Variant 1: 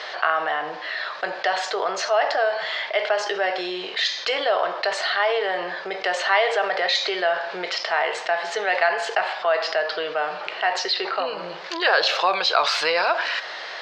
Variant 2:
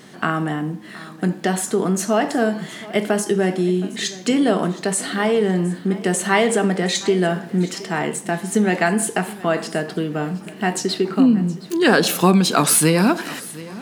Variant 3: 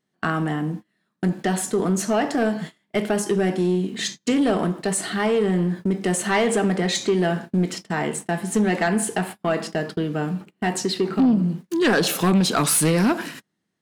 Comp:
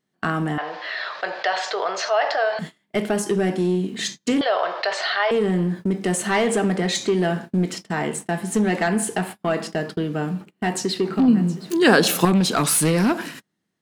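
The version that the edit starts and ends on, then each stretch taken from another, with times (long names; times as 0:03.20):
3
0:00.58–0:02.59: punch in from 1
0:04.41–0:05.31: punch in from 1
0:11.28–0:12.25: punch in from 2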